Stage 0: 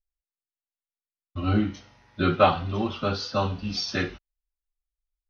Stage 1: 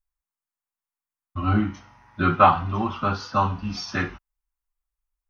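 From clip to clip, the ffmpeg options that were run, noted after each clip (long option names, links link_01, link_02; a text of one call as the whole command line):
ffmpeg -i in.wav -af "equalizer=frequency=500:width_type=o:width=1:gain=-9,equalizer=frequency=1000:width_type=o:width=1:gain=9,equalizer=frequency=4000:width_type=o:width=1:gain=-10,volume=2.5dB" out.wav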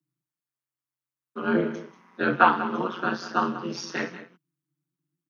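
ffmpeg -i in.wav -af "tremolo=f=180:d=0.919,aecho=1:1:188:0.2,afreqshift=130,volume=1dB" out.wav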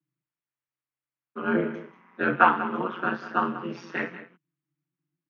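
ffmpeg -i in.wav -af "highshelf=frequency=3500:width_type=q:width=1.5:gain=-12.5,volume=-1.5dB" out.wav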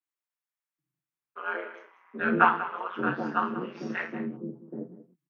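ffmpeg -i in.wav -filter_complex "[0:a]acrossover=split=520|4200[link_01][link_02][link_03];[link_03]adelay=30[link_04];[link_01]adelay=780[link_05];[link_05][link_02][link_04]amix=inputs=3:normalize=0,volume=-1.5dB" out.wav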